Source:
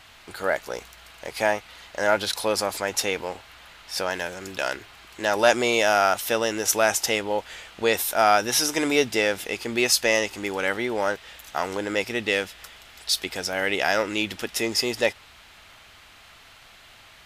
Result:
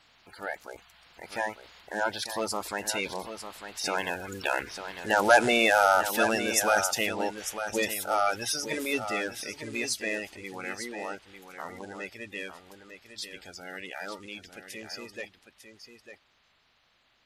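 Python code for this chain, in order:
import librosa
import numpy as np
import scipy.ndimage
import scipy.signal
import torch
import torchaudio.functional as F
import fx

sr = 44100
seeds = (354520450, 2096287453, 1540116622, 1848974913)

y = fx.spec_quant(x, sr, step_db=30)
y = fx.doppler_pass(y, sr, speed_mps=12, closest_m=18.0, pass_at_s=5.1)
y = y + 10.0 ** (-9.5 / 20.0) * np.pad(y, (int(899 * sr / 1000.0), 0))[:len(y)]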